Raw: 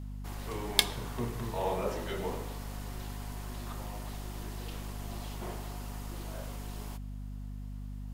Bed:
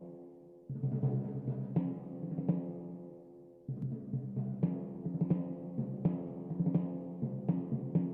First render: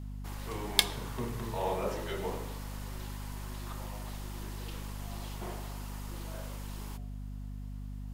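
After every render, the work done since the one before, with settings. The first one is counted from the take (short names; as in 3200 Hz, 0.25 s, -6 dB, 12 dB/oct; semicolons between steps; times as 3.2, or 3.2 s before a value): de-hum 60 Hz, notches 12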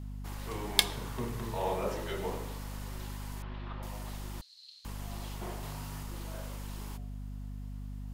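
3.42–3.83 inverse Chebyshev low-pass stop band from 8200 Hz, stop band 50 dB; 4.41–4.85 ladder band-pass 4300 Hz, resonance 90%; 5.6–6.03 doubler 27 ms -2 dB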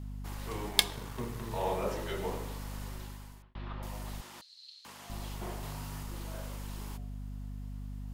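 0.69–1.51 G.711 law mismatch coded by A; 2.85–3.55 fade out; 4.21–5.1 weighting filter A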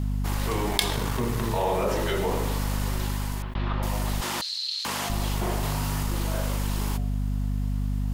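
fast leveller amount 70%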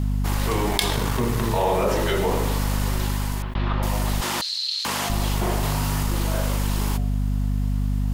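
gain +4 dB; limiter -3 dBFS, peak gain reduction 3 dB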